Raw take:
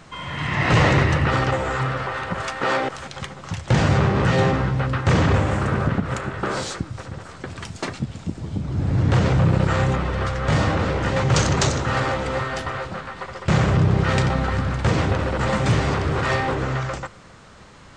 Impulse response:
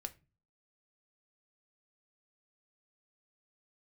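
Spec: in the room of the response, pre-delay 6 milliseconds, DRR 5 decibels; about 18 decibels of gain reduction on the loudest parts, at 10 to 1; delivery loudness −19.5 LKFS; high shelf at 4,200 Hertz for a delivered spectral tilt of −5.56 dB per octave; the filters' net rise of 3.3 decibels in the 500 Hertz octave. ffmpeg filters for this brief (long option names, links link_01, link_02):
-filter_complex "[0:a]equalizer=frequency=500:width_type=o:gain=4,highshelf=frequency=4200:gain=-6.5,acompressor=threshold=-32dB:ratio=10,asplit=2[link_01][link_02];[1:a]atrim=start_sample=2205,adelay=6[link_03];[link_02][link_03]afir=irnorm=-1:irlink=0,volume=-2dB[link_04];[link_01][link_04]amix=inputs=2:normalize=0,volume=15dB"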